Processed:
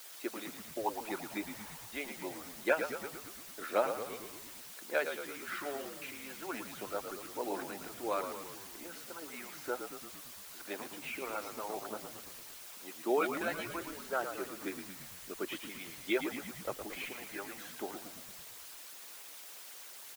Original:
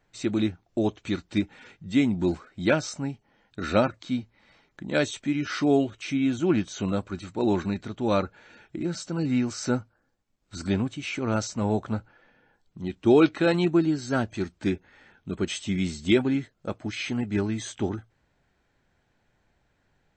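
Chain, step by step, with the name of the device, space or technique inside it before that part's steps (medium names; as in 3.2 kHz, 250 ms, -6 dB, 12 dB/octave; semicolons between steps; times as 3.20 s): wax cylinder (band-pass 310–2400 Hz; wow and flutter 28 cents; white noise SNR 12 dB); high-pass 370 Hz 12 dB/octave; harmonic-percussive split harmonic -16 dB; 0.86–1.86 s: peaking EQ 910 Hz +11.5 dB 0.48 oct; frequency-shifting echo 113 ms, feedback 60%, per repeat -49 Hz, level -8 dB; trim -3.5 dB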